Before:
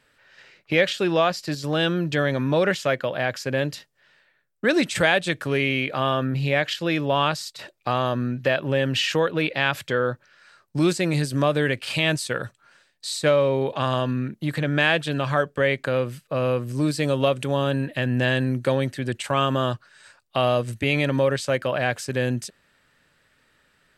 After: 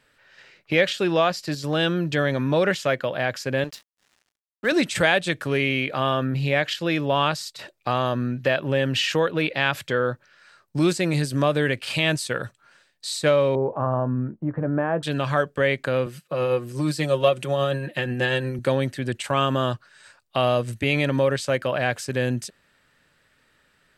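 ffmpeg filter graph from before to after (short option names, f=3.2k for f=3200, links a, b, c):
-filter_complex "[0:a]asettb=1/sr,asplit=3[a][b][c];[a]atrim=end=3.644[d];[b]atrim=start=3.64:end=4.72,asetpts=PTS-STARTPTS,afade=t=in:d=0.004:c=qsin,afade=t=out:st=1.076:d=0.004:c=qsin,highpass=f=370:p=1,acompressor=mode=upward:threshold=-36dB:ratio=2.5:attack=3.2:release=140:knee=2.83:detection=peak,aeval=exprs='sgn(val(0))*max(abs(val(0))-0.00668,0)':c=same[e];[c]atrim=start=4.716[f];[d][e]acrossfade=d=0.004:c1=hsin:c2=qsin[g];[g][f]acrossfade=d=0.004:c1=qsin:c2=hsin,asettb=1/sr,asplit=3[h][i][j];[h]atrim=end=13.554[k];[i]atrim=start=13.55:end=15.03,asetpts=PTS-STARTPTS,afade=t=in:d=0.004:c=qsin,afade=t=out:st=1.476:d=0.004:c=qsin,lowpass=f=1.2k:w=0.5412,lowpass=f=1.2k:w=1.3066,asplit=2[l][m];[m]adelay=17,volume=-12dB[n];[l][n]amix=inputs=2:normalize=0,atrim=end_sample=65268[o];[j]atrim=start=15.026[p];[k][o]acrossfade=d=0.004:c1=hsin:c2=qsin[q];[q][p]acrossfade=d=0.004:c1=qsin:c2=hsin,asettb=1/sr,asplit=3[r][s][t];[r]atrim=end=16.064[u];[s]atrim=start=16.06:end=18.59,asetpts=PTS-STARTPTS,afade=t=in:d=0.004:c=qsin,afade=t=out:st=2.526:d=0.004:c=qsin,highpass=130,aecho=1:1:5.6:0.63,atrim=end_sample=111573,tremolo=f=8.3:d=0.32[v];[t]atrim=start=18.586[w];[u][v]acrossfade=d=0.004:c1=hsin:c2=qsin[x];[x][w]acrossfade=d=0.004:c1=qsin:c2=hsin"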